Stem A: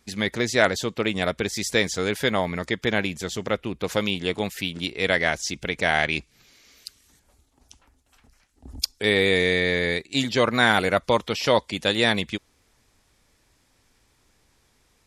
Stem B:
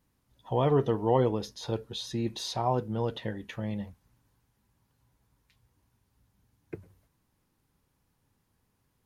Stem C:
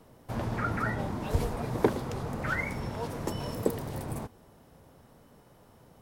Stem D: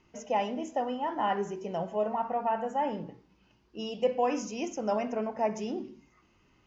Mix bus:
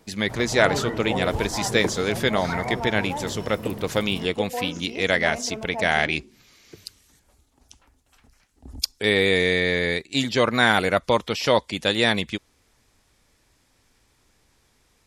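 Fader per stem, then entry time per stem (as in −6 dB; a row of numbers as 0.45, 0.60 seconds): +0.5, −5.5, −2.0, −3.0 decibels; 0.00, 0.00, 0.00, 0.35 seconds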